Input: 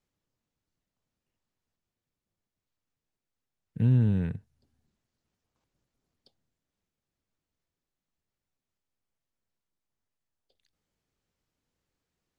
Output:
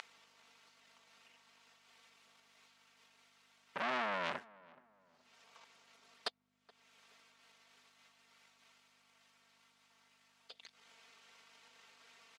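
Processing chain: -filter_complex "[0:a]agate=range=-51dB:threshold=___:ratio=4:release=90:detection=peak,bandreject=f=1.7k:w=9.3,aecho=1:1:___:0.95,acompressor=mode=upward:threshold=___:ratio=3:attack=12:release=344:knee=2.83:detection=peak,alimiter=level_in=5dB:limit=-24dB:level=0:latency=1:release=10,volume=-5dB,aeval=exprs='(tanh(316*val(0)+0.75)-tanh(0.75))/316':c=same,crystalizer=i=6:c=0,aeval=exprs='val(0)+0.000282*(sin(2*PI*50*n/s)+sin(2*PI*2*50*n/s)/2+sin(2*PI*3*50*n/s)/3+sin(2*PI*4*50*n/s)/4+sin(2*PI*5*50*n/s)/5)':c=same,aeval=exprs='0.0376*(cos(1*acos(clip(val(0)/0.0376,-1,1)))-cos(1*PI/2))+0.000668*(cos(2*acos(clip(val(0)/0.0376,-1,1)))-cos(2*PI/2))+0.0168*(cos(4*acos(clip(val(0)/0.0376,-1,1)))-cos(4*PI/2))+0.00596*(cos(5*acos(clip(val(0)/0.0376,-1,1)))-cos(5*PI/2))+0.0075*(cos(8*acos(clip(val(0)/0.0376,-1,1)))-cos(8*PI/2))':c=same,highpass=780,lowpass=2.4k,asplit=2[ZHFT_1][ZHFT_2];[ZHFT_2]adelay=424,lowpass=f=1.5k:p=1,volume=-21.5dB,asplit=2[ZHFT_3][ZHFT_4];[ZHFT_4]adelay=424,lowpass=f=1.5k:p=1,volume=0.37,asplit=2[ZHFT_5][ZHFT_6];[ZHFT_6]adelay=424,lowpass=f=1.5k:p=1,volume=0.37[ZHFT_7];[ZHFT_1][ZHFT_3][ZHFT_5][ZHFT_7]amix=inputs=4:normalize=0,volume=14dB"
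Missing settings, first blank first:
-54dB, 4.4, -42dB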